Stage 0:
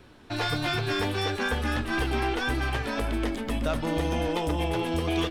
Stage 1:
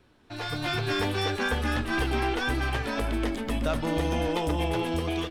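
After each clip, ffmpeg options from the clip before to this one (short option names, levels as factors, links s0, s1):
-af "dynaudnorm=f=230:g=5:m=2.99,volume=0.355"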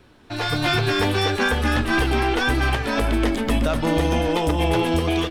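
-af "alimiter=limit=0.112:level=0:latency=1:release=257,volume=2.82"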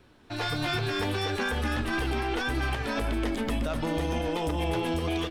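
-af "alimiter=limit=0.188:level=0:latency=1:release=63,volume=0.531"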